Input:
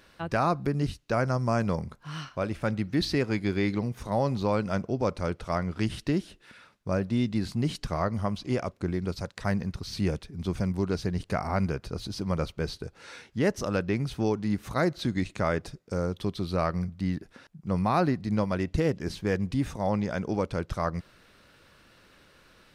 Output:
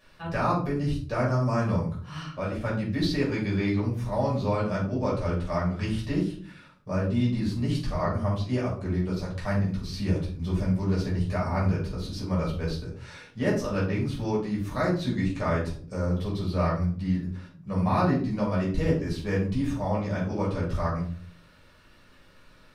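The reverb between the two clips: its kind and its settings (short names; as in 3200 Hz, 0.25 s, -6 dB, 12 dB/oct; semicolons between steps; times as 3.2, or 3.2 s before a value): shoebox room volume 360 m³, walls furnished, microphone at 5.8 m; gain -9.5 dB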